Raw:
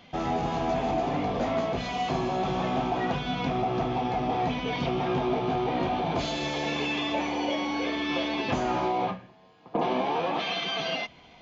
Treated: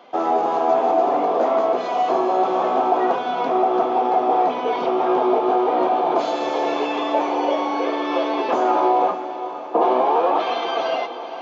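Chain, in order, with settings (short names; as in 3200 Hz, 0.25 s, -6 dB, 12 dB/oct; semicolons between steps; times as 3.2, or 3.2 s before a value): HPF 230 Hz 24 dB/oct; band shelf 690 Hz +12 dB 2.4 oct; diffused feedback echo 0.501 s, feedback 57%, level -12 dB; gain -1.5 dB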